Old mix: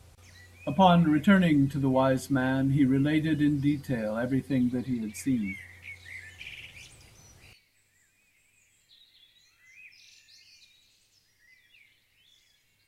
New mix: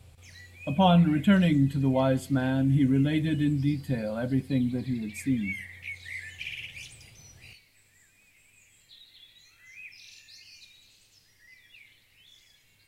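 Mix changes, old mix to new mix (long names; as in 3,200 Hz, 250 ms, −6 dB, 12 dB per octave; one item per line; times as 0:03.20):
background +5.5 dB
reverb: on, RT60 0.50 s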